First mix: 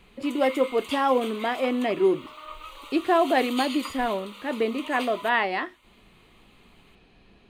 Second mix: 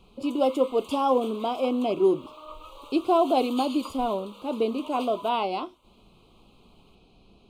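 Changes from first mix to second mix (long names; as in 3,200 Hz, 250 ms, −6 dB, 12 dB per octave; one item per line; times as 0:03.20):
background: add tilt shelving filter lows +6 dB, about 1,100 Hz
master: add Butterworth band-reject 1,800 Hz, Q 1.2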